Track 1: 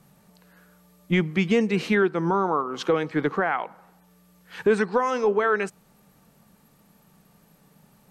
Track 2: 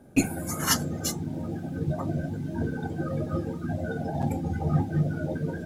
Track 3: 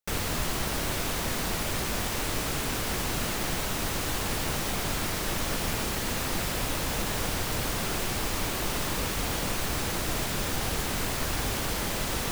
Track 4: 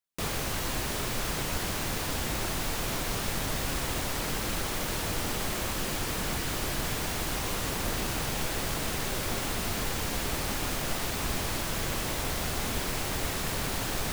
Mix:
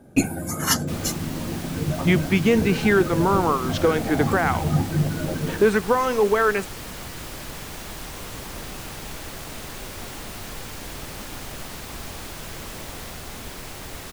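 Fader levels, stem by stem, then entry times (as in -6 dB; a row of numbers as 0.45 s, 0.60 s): +2.5 dB, +3.0 dB, -13.0 dB, -5.0 dB; 0.95 s, 0.00 s, 0.80 s, 0.70 s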